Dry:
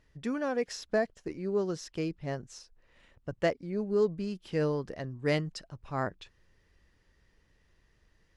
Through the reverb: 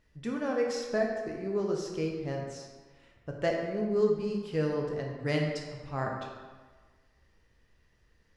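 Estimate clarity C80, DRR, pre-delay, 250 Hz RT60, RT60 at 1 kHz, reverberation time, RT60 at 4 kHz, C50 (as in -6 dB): 4.5 dB, 0.0 dB, 11 ms, 1.3 s, 1.5 s, 1.4 s, 1.0 s, 2.5 dB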